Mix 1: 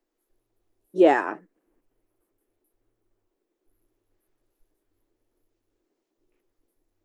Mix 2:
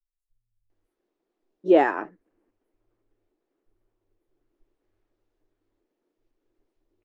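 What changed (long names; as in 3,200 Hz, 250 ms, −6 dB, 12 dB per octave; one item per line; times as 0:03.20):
second voice: entry +0.70 s
master: add high-frequency loss of the air 110 metres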